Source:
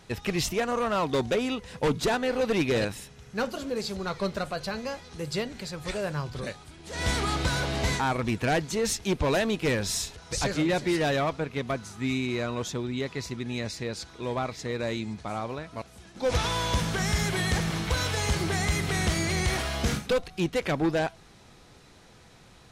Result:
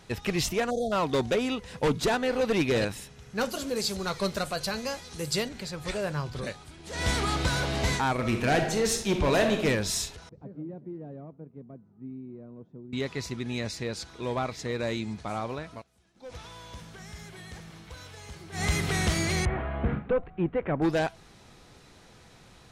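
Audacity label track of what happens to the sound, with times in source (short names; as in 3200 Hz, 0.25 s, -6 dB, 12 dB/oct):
0.700000	0.920000	spectral delete 820–3200 Hz
3.410000	5.490000	high shelf 4900 Hz +11.5 dB
8.140000	9.640000	reverb throw, RT60 0.84 s, DRR 3.5 dB
10.290000	12.930000	ladder band-pass 220 Hz, resonance 20%
15.710000	18.650000	dip -17.5 dB, fades 0.13 s
19.450000	20.820000	Gaussian blur sigma 4.6 samples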